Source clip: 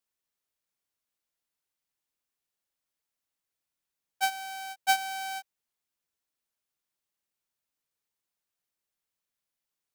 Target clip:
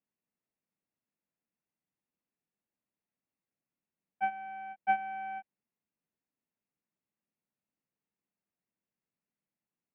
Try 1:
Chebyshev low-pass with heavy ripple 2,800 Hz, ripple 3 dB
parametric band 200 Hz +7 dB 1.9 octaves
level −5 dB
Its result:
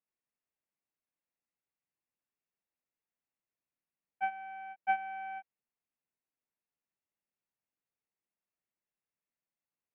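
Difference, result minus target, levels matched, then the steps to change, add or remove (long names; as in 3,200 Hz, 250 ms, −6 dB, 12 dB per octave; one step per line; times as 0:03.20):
250 Hz band −8.0 dB
change: parametric band 200 Hz +17.5 dB 1.9 octaves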